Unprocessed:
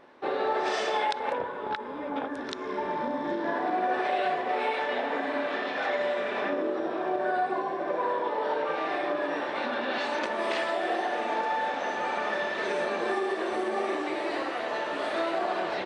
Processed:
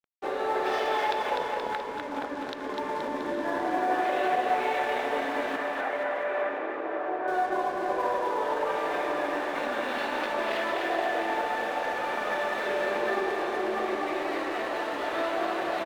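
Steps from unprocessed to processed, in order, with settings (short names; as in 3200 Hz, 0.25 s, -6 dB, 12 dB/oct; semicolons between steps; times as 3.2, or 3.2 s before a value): LPF 3900 Hz; low shelf 200 Hz -4 dB; notches 60/120/180/240 Hz; crossover distortion -46 dBFS; 5.56–7.28 three-band isolator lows -13 dB, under 350 Hz, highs -23 dB, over 2600 Hz; on a send: bouncing-ball echo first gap 0.25 s, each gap 0.9×, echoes 5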